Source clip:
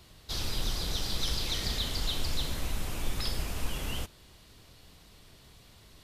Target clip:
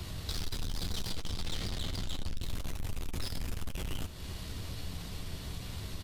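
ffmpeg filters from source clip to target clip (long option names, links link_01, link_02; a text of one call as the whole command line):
ffmpeg -i in.wav -filter_complex "[0:a]acrossover=split=220[link_01][link_02];[link_01]acontrast=81[link_03];[link_03][link_02]amix=inputs=2:normalize=0,asettb=1/sr,asplit=3[link_04][link_05][link_06];[link_04]atrim=end=1.114[link_07];[link_05]atrim=start=1.11:end=2.35,asetpts=PTS-STARTPTS,afade=type=in:duration=0.004:curve=qsin,afade=type=out:start_time=1.236:duration=0.004:curve=qsin,highshelf=frequency=8000:gain=-10[link_08];[link_06]atrim=start=2.346[link_09];[link_07][link_08]acrossfade=duration=0.004:curve1=hsin:curve2=qsin[link_10];[link_10][link_09]acrossfade=duration=0.004:curve1=qsin:curve2=hsin,aeval=exprs='(tanh(56.2*val(0)+0.35)-tanh(0.35))/56.2':channel_layout=same,acompressor=threshold=-45dB:ratio=6,aecho=1:1:11|72:0.335|0.188,volume=11.5dB" out.wav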